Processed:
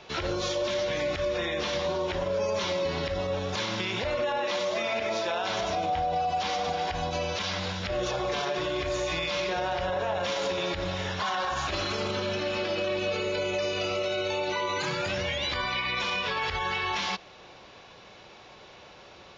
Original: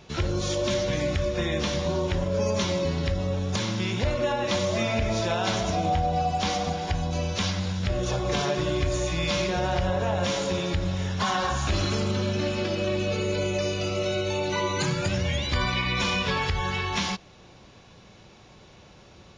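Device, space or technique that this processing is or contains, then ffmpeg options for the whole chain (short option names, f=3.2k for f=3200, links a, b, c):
DJ mixer with the lows and highs turned down: -filter_complex "[0:a]asettb=1/sr,asplit=3[a][b][c];[a]atrim=end=4.384[d];[b]atrim=start=4.38:end=5.44,asetpts=PTS-STARTPTS,afade=t=in:d=0.004:c=qsin,afade=t=out:st=1.056:d=0.004:c=qsin,highpass=180[e];[c]atrim=start=5.436[f];[d][e]acrossfade=d=0.004:c1=hsin:c2=qsin[g];[g][f]acrossfade=d=0.004:c1=qsin:c2=hsin,acrossover=split=380 5700:gain=0.224 1 0.126[h][i][j];[h][i][j]amix=inputs=3:normalize=0,alimiter=level_in=2dB:limit=-24dB:level=0:latency=1:release=54,volume=-2dB,volume=5dB"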